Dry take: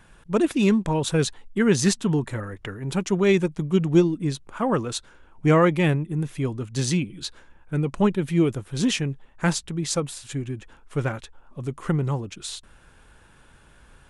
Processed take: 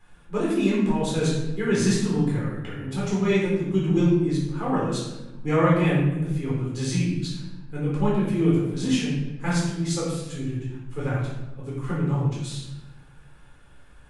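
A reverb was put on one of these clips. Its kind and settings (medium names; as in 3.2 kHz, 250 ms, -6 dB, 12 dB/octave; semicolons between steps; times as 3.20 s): simulated room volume 450 m³, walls mixed, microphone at 4 m; trim -12 dB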